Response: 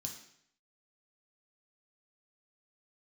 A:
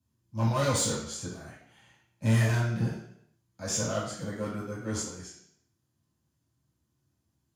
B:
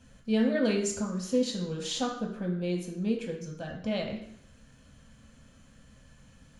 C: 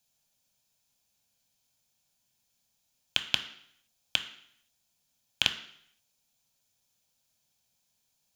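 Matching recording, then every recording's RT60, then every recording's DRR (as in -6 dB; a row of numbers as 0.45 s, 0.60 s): B; 0.70 s, 0.70 s, 0.70 s; -8.5 dB, 0.0 dB, 7.0 dB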